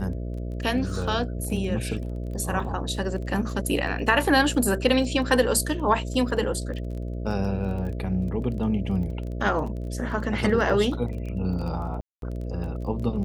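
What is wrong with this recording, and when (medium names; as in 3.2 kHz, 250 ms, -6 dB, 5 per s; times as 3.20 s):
buzz 60 Hz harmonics 11 -31 dBFS
crackle 19 per s -34 dBFS
12.01–12.22 s: dropout 212 ms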